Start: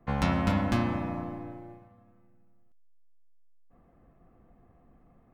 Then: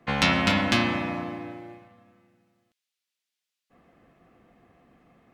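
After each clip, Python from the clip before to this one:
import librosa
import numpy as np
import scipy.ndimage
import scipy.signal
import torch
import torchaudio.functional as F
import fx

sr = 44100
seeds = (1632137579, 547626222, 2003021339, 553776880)

y = fx.weighting(x, sr, curve='D')
y = y * librosa.db_to_amplitude(4.5)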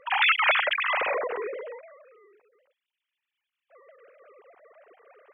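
y = fx.sine_speech(x, sr)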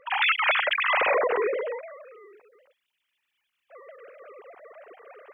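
y = fx.rider(x, sr, range_db=10, speed_s=0.5)
y = y * librosa.db_to_amplitude(1.5)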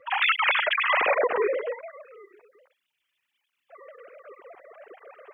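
y = fx.flanger_cancel(x, sr, hz=1.3, depth_ms=5.0)
y = y * librosa.db_to_amplitude(3.0)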